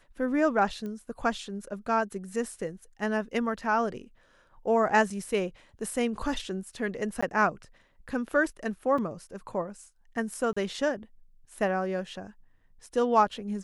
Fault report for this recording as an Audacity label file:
0.860000	0.860000	pop -27 dBFS
5.100000	5.100000	dropout 4.1 ms
7.210000	7.220000	dropout 15 ms
8.980000	8.980000	dropout 4.3 ms
10.530000	10.560000	dropout 35 ms

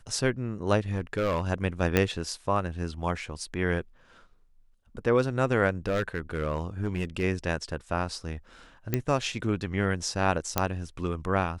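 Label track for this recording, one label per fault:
0.810000	1.450000	clipped -22 dBFS
1.970000	1.970000	pop -8 dBFS
5.870000	7.240000	clipped -22.5 dBFS
8.940000	8.940000	pop -11 dBFS
10.580000	10.580000	pop -7 dBFS

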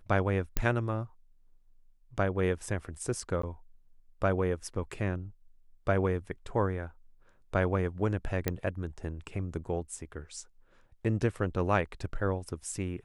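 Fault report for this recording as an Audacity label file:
0.570000	0.570000	pop -13 dBFS
3.420000	3.430000	dropout 14 ms
8.480000	8.480000	pop -13 dBFS

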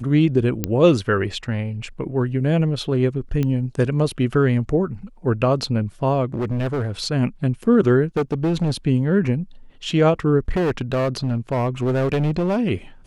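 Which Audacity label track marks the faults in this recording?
0.640000	0.640000	pop -6 dBFS
3.430000	3.430000	pop -12 dBFS
6.340000	6.910000	clipped -19.5 dBFS
8.170000	8.720000	clipped -16 dBFS
10.480000	12.590000	clipped -16.5 dBFS

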